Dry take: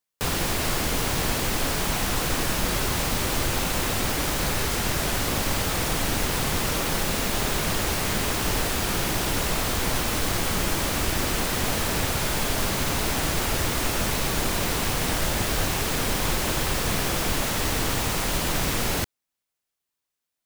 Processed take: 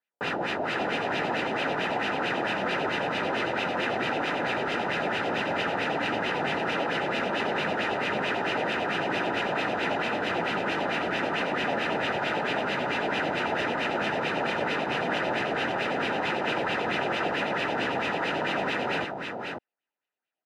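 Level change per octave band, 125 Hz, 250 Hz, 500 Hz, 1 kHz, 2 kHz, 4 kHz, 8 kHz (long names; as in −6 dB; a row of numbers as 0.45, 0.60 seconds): −11.5, −2.5, +2.0, +1.5, +1.5, −6.0, −24.0 decibels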